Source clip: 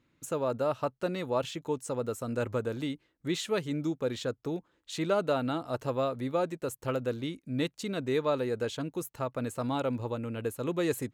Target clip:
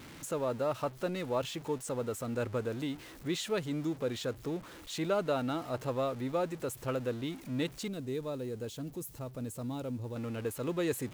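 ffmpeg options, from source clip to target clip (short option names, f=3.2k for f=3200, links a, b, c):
-filter_complex "[0:a]aeval=exprs='val(0)+0.5*0.00944*sgn(val(0))':c=same,asettb=1/sr,asplit=3[a][b][c];[a]atrim=end=7.884[d];[b]atrim=start=7.88:end=10.16,asetpts=PTS-STARTPTS,afade=t=in:d=0.004:c=qsin,afade=t=out:st=2.276:d=0.004:c=qsin,equalizer=f=1.5k:w=0.36:g=-12[e];[c]atrim=start=10.156[f];[d][e]acrossfade=d=0.004:c1=hsin:c2=qsin[g];[g][f]acrossfade=d=0.004:c1=qsin:c2=hsin,volume=-3.5dB"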